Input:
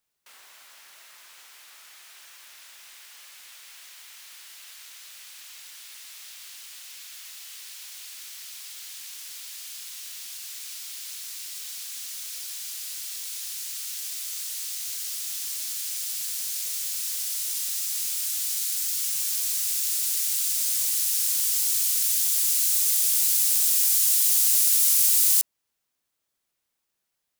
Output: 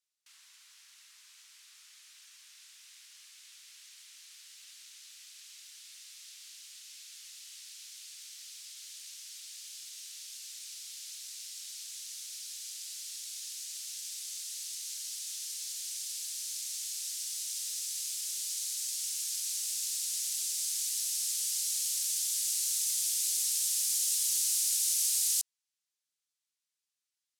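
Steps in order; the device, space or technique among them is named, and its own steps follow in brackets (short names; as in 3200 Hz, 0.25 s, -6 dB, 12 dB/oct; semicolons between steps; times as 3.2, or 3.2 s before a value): HPF 880 Hz 24 dB/oct; piezo pickup straight into a mixer (LPF 6400 Hz 12 dB/oct; differentiator)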